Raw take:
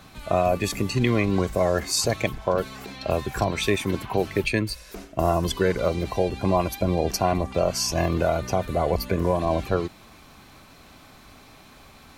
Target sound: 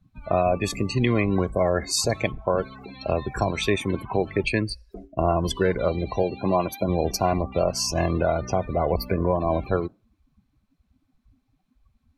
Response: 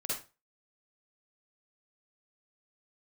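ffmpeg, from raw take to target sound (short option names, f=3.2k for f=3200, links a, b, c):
-filter_complex "[0:a]asettb=1/sr,asplit=3[a][b][c];[a]atrim=end=6.234[d];[b]atrim=start=6.23:end=6.89,asetpts=PTS-STARTPTS,afade=t=in:d=0.004:c=qsin,afade=t=out:st=0.656:d=0.004:c=qsin,highpass=130[e];[c]atrim=start=6.886[f];[d][e]acrossfade=d=0.004:c1=hsin:c2=qsin[g];[g][f]acrossfade=d=0.004:c1=qsin:c2=hsin,afftdn=nr=32:nf=-36"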